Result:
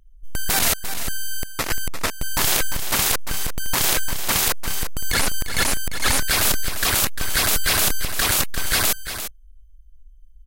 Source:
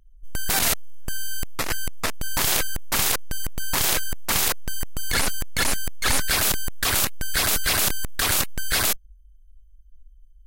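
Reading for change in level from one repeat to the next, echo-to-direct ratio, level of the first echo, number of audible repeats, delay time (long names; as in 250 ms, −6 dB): repeats not evenly spaced, −10.0 dB, −10.0 dB, 1, 348 ms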